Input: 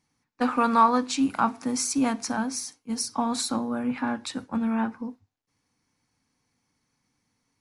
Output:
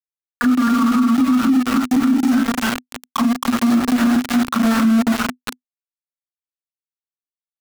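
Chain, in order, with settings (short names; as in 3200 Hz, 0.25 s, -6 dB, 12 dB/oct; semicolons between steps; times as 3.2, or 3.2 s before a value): reverse delay 0.229 s, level -0.5 dB; auto-wah 340–2100 Hz, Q 4.7, down, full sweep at -20 dBFS; EQ curve 240 Hz 0 dB, 460 Hz -20 dB, 880 Hz -14 dB, 1300 Hz +12 dB, 1900 Hz +2 dB; loudspeakers at several distances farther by 12 m -2 dB, 92 m -4 dB; sample gate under -38 dBFS; bell 250 Hz +10.5 dB 0.23 oct; compressor 3:1, threshold -36 dBFS, peak gain reduction 11.5 dB; maximiser +34.5 dB; gain -8 dB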